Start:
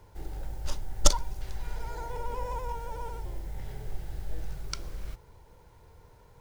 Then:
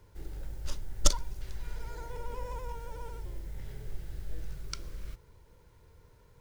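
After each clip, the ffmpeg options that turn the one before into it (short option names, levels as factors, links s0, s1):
-af "equalizer=f=780:w=2.6:g=-9.5,volume=0.708"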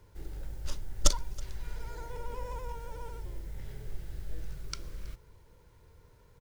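-af "aecho=1:1:323:0.0631"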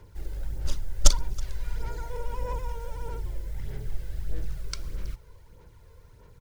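-af "aphaser=in_gain=1:out_gain=1:delay=2:decay=0.44:speed=1.6:type=sinusoidal,volume=1.41"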